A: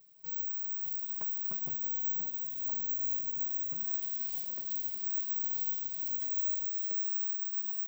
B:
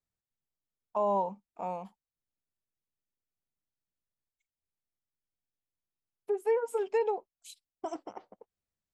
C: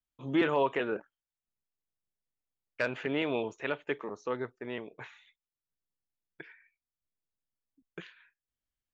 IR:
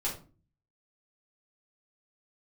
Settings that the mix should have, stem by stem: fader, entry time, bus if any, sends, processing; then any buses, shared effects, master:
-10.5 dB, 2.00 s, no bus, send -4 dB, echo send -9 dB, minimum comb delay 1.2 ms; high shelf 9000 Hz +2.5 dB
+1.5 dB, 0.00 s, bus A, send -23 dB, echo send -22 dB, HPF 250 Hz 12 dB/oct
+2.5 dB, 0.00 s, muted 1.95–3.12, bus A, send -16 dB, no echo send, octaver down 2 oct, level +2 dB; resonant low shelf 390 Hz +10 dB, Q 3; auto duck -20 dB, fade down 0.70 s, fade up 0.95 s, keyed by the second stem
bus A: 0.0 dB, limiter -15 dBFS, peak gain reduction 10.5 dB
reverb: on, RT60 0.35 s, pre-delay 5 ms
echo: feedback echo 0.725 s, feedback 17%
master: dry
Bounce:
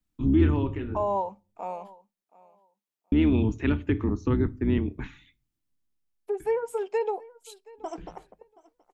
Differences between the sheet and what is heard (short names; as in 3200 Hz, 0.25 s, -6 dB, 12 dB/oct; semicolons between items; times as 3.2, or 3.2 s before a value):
stem A: muted; reverb return -6.0 dB